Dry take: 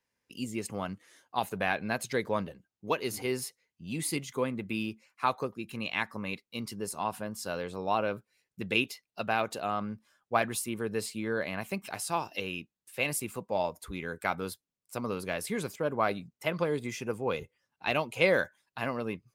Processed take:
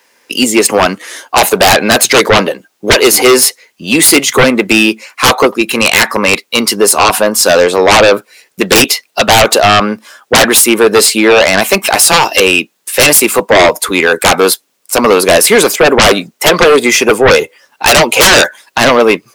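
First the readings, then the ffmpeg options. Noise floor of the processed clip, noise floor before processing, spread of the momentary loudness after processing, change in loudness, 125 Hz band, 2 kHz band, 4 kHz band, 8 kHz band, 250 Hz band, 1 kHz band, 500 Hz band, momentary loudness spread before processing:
−59 dBFS, below −85 dBFS, 7 LU, +25.5 dB, +18.5 dB, +25.0 dB, +30.5 dB, +31.0 dB, +22.5 dB, +23.0 dB, +25.0 dB, 10 LU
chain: -filter_complex "[0:a]acrossover=split=280[link_01][link_02];[link_01]acompressor=threshold=-48dB:ratio=6[link_03];[link_02]aeval=exprs='0.299*sin(PI/2*10*val(0)/0.299)':channel_layout=same[link_04];[link_03][link_04]amix=inputs=2:normalize=0,volume=9dB"

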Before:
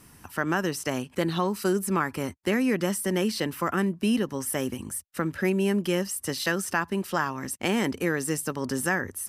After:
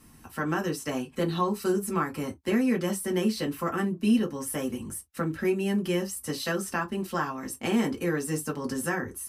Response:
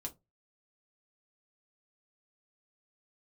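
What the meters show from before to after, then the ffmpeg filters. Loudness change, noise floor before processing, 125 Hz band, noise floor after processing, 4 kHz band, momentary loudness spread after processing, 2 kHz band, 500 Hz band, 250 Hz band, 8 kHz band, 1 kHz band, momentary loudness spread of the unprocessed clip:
−1.5 dB, −54 dBFS, −1.5 dB, −53 dBFS, −3.5 dB, 7 LU, −4.5 dB, −1.5 dB, 0.0 dB, −3.5 dB, −2.0 dB, 5 LU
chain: -filter_complex "[1:a]atrim=start_sample=2205,atrim=end_sample=3528,asetrate=48510,aresample=44100[link_01];[0:a][link_01]afir=irnorm=-1:irlink=0"

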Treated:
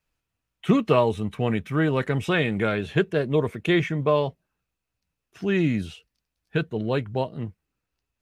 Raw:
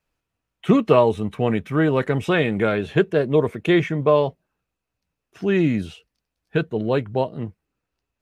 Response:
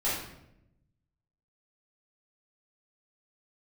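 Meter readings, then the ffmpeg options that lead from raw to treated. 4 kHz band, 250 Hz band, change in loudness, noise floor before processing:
−0.5 dB, −3.5 dB, −3.5 dB, −82 dBFS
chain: -af "equalizer=frequency=510:width=0.43:gain=-5"

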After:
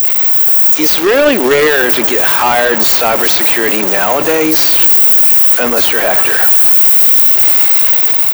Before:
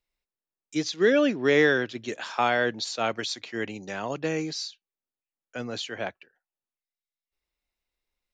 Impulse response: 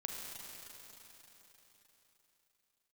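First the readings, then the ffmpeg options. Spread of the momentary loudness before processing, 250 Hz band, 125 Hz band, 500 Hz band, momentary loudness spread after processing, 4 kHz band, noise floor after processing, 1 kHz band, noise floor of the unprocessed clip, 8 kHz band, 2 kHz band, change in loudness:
14 LU, +11.5 dB, +7.5 dB, +13.5 dB, 6 LU, +17.0 dB, −13 dBFS, +16.5 dB, below −85 dBFS, +24.5 dB, +14.5 dB, +20.5 dB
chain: -filter_complex "[0:a]aeval=exprs='val(0)+0.5*0.0376*sgn(val(0))':channel_layout=same,aemphasis=mode=production:type=riaa,deesser=0.85,equalizer=frequency=84:width_type=o:width=2.4:gain=-13.5,dynaudnorm=framelen=210:gausssize=7:maxgain=11.5dB,asoftclip=type=tanh:threshold=-20.5dB,acrusher=bits=7:mix=0:aa=0.5,acrossover=split=5200[link_01][link_02];[link_01]adelay=40[link_03];[link_03][link_02]amix=inputs=2:normalize=0,asplit=2[link_04][link_05];[1:a]atrim=start_sample=2205,asetrate=52920,aresample=44100[link_06];[link_05][link_06]afir=irnorm=-1:irlink=0,volume=-14dB[link_07];[link_04][link_07]amix=inputs=2:normalize=0,alimiter=level_in=23dB:limit=-1dB:release=50:level=0:latency=1,volume=-1dB"

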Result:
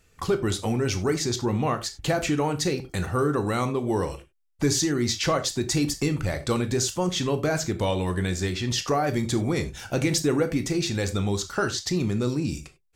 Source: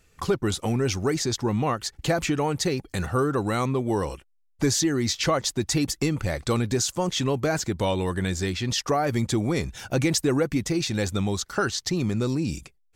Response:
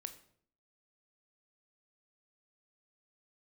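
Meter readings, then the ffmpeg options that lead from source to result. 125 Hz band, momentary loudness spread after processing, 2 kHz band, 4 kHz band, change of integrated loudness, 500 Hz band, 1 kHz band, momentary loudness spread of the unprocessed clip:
0.0 dB, 4 LU, −0.5 dB, −0.5 dB, 0.0 dB, 0.0 dB, −0.5 dB, 4 LU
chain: -filter_complex "[0:a]acontrast=32[link_01];[1:a]atrim=start_sample=2205,afade=type=out:start_time=0.17:duration=0.01,atrim=end_sample=7938,asetrate=52920,aresample=44100[link_02];[link_01][link_02]afir=irnorm=-1:irlink=0"

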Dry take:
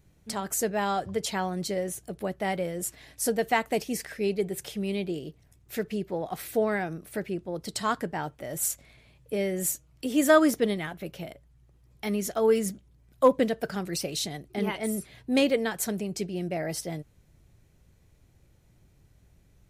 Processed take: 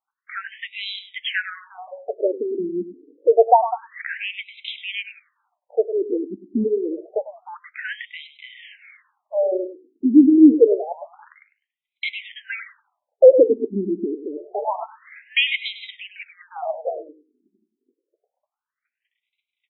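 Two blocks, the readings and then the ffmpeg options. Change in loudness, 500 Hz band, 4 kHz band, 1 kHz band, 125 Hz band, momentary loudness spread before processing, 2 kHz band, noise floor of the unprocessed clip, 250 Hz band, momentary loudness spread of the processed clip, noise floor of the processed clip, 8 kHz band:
+8.5 dB, +7.5 dB, +7.0 dB, +6.0 dB, can't be measured, 12 LU, +6.0 dB, −61 dBFS, +8.5 dB, 22 LU, below −85 dBFS, below −40 dB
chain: -filter_complex "[0:a]agate=range=-23dB:threshold=-56dB:ratio=16:detection=peak,asplit=2[link_01][link_02];[link_02]aecho=0:1:101|202|303:0.266|0.0532|0.0106[link_03];[link_01][link_03]amix=inputs=2:normalize=0,apsyclip=13.5dB,afftfilt=real='re*between(b*sr/1024,290*pow(2900/290,0.5+0.5*sin(2*PI*0.27*pts/sr))/1.41,290*pow(2900/290,0.5+0.5*sin(2*PI*0.27*pts/sr))*1.41)':imag='im*between(b*sr/1024,290*pow(2900/290,0.5+0.5*sin(2*PI*0.27*pts/sr))/1.41,290*pow(2900/290,0.5+0.5*sin(2*PI*0.27*pts/sr))*1.41)':win_size=1024:overlap=0.75"

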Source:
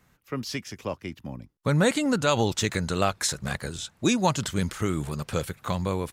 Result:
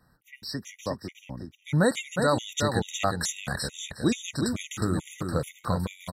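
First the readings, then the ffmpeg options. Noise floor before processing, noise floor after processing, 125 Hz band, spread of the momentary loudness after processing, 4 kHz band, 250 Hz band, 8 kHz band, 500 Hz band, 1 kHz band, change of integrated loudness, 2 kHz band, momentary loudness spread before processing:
−64 dBFS, −64 dBFS, −2.0 dB, 12 LU, −2.5 dB, −2.0 dB, −2.0 dB, −1.5 dB, −2.5 dB, −1.5 dB, −1.5 dB, 12 LU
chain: -af "bandreject=frequency=400:width=12,aecho=1:1:362|724|1086:0.562|0.09|0.0144,afftfilt=real='re*gt(sin(2*PI*2.3*pts/sr)*(1-2*mod(floor(b*sr/1024/1900),2)),0)':imag='im*gt(sin(2*PI*2.3*pts/sr)*(1-2*mod(floor(b*sr/1024/1900),2)),0)':win_size=1024:overlap=0.75"

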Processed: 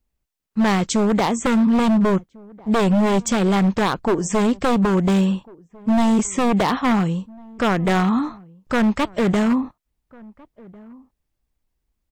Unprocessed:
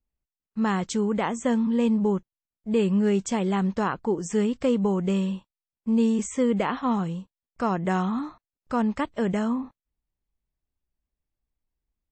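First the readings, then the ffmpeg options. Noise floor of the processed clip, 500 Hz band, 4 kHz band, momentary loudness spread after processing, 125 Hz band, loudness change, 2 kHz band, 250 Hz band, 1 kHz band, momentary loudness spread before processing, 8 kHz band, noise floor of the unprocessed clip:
−77 dBFS, +4.5 dB, +10.5 dB, 7 LU, +7.0 dB, +6.0 dB, +9.0 dB, +6.0 dB, +7.5 dB, 9 LU, +8.5 dB, below −85 dBFS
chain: -filter_complex "[0:a]aeval=exprs='0.0944*(abs(mod(val(0)/0.0944+3,4)-2)-1)':channel_layout=same,asplit=2[link_01][link_02];[link_02]adelay=1399,volume=-24dB,highshelf=frequency=4000:gain=-31.5[link_03];[link_01][link_03]amix=inputs=2:normalize=0,volume=8.5dB"

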